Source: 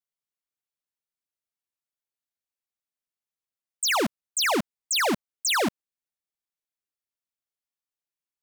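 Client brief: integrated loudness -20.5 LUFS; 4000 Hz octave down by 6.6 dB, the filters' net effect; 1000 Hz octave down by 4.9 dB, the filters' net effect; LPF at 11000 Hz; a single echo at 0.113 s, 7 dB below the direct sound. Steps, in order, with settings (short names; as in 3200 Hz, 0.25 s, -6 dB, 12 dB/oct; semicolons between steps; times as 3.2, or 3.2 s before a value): LPF 11000 Hz; bell 1000 Hz -6 dB; bell 4000 Hz -8.5 dB; echo 0.113 s -7 dB; gain +7.5 dB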